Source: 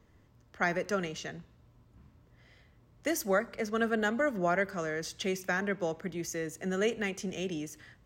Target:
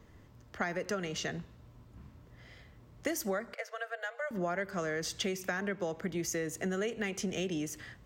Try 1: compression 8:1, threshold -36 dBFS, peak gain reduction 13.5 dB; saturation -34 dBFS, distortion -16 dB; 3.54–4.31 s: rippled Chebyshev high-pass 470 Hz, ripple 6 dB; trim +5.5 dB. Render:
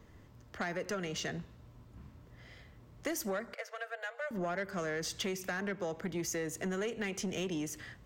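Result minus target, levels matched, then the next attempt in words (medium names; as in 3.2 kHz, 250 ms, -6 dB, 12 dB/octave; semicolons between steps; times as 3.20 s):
saturation: distortion +19 dB
compression 8:1, threshold -36 dBFS, peak gain reduction 13.5 dB; saturation -22 dBFS, distortion -35 dB; 3.54–4.31 s: rippled Chebyshev high-pass 470 Hz, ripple 6 dB; trim +5.5 dB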